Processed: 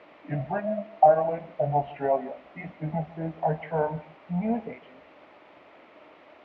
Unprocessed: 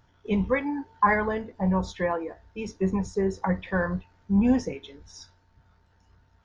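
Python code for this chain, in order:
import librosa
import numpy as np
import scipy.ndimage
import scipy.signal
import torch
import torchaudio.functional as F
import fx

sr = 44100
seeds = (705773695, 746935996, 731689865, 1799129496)

y = fx.pitch_glide(x, sr, semitones=-6.0, runs='ending unshifted')
y = fx.rider(y, sr, range_db=3, speed_s=0.5)
y = fx.fixed_phaser(y, sr, hz=1300.0, stages=6)
y = fx.quant_dither(y, sr, seeds[0], bits=8, dither='triangular')
y = fx.cabinet(y, sr, low_hz=240.0, low_slope=12, high_hz=2200.0, hz=(300.0, 610.0, 1600.0), db=(7, 9, -8))
y = y + 10.0 ** (-20.0 / 20.0) * np.pad(y, (int(150 * sr / 1000.0), 0))[:len(y)]
y = y * 10.0 ** (4.5 / 20.0)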